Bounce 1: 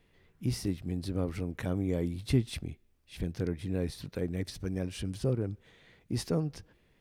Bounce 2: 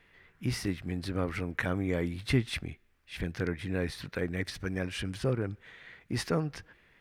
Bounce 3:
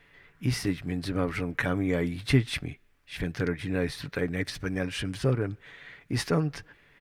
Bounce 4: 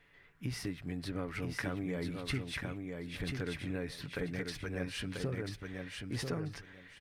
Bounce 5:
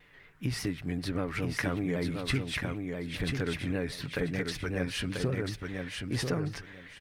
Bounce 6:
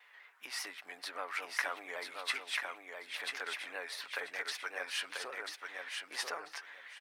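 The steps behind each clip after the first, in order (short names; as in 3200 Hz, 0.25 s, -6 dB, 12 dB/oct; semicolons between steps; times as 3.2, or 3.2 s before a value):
bell 1700 Hz +13.5 dB 1.8 oct; gain -1 dB
comb 7 ms, depth 35%; gain +3 dB
compressor, threshold -27 dBFS, peak gain reduction 11 dB; on a send: feedback echo 0.989 s, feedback 20%, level -4.5 dB; on the sum: gain -6.5 dB
shaped vibrato saw down 5.1 Hz, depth 100 cents; gain +6 dB
ladder high-pass 660 Hz, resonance 30%; gain +5 dB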